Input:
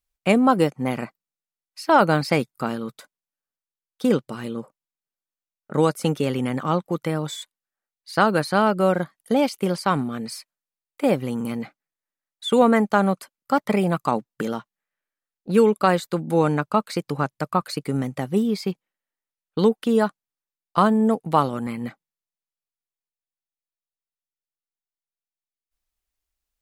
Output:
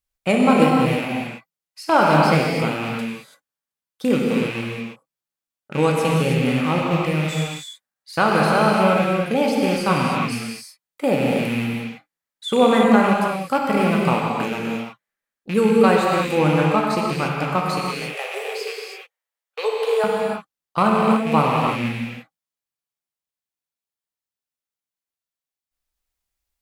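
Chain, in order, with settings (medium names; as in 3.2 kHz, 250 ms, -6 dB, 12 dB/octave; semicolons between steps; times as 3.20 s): rattle on loud lows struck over -35 dBFS, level -20 dBFS; 17.85–20.04 s: steep high-pass 430 Hz 72 dB/octave; gated-style reverb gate 360 ms flat, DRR -2.5 dB; trim -1.5 dB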